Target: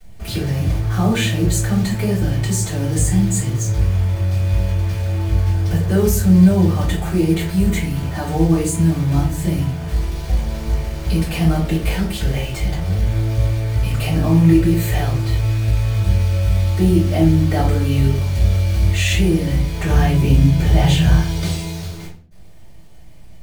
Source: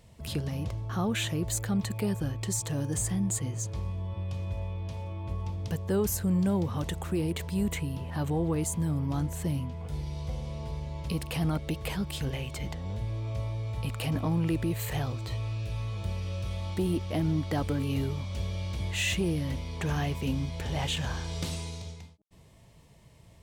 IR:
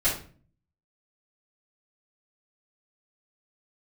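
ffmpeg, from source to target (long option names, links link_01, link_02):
-filter_complex "[0:a]asettb=1/sr,asplit=3[link_01][link_02][link_03];[link_01]atrim=end=19.874[link_04];[link_02]atrim=start=19.87:end=21.19,asetpts=PTS-STARTPTS,afade=type=in:duration=0.004:curve=qsin,afade=type=out:start_time=1.316:duration=0.004:curve=qsin,equalizer=frequency=160:width_type=o:width=2.6:gain=7[link_05];[link_03]atrim=start=21.186[link_06];[link_04][link_05]acrossfade=duration=0.004:curve1=hsin:curve2=qsin[link_07];[link_07][link_06]acrossfade=duration=0.004:curve1=qsin:curve2=hsin,acrusher=bits=8:dc=4:mix=0:aa=0.000001[link_08];[1:a]atrim=start_sample=2205,asetrate=48510,aresample=44100[link_09];[link_08][link_09]afir=irnorm=-1:irlink=0"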